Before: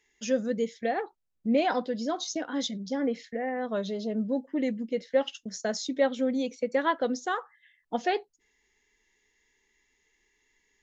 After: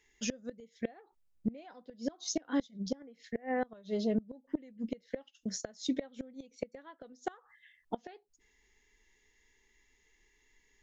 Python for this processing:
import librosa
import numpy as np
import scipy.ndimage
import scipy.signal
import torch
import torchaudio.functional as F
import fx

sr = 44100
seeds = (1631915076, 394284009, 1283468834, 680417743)

y = fx.gate_flip(x, sr, shuts_db=-22.0, range_db=-26)
y = fx.low_shelf(y, sr, hz=84.0, db=10.0)